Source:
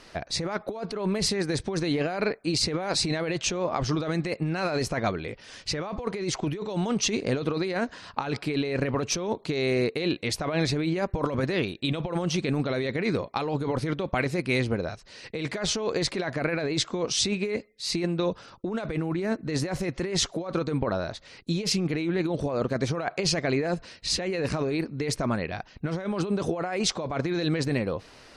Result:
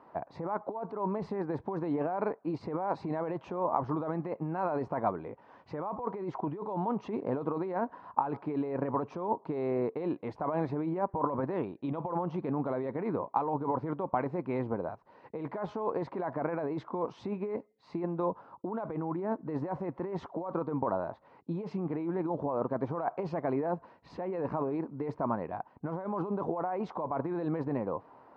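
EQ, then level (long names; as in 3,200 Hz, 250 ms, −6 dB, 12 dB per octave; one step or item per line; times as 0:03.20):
high-pass filter 120 Hz
low-pass with resonance 950 Hz, resonance Q 4.2
parametric band 280 Hz +3 dB 0.34 octaves
−7.5 dB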